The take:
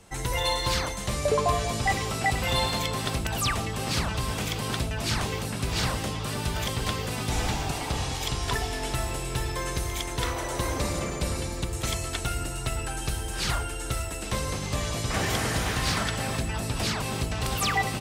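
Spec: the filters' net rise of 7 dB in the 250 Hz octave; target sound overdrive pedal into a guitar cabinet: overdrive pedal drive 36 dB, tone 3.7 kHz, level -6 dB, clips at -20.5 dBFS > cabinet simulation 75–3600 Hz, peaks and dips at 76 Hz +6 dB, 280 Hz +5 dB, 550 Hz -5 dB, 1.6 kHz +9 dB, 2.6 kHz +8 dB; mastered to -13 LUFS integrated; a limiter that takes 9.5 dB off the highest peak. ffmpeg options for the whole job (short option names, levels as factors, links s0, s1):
-filter_complex "[0:a]equalizer=f=250:t=o:g=6.5,alimiter=limit=0.0944:level=0:latency=1,asplit=2[s0][s1];[s1]highpass=f=720:p=1,volume=63.1,asoftclip=type=tanh:threshold=0.0944[s2];[s0][s2]amix=inputs=2:normalize=0,lowpass=f=3700:p=1,volume=0.501,highpass=75,equalizer=f=76:t=q:w=4:g=6,equalizer=f=280:t=q:w=4:g=5,equalizer=f=550:t=q:w=4:g=-5,equalizer=f=1600:t=q:w=4:g=9,equalizer=f=2600:t=q:w=4:g=8,lowpass=f=3600:w=0.5412,lowpass=f=3600:w=1.3066,volume=3.35"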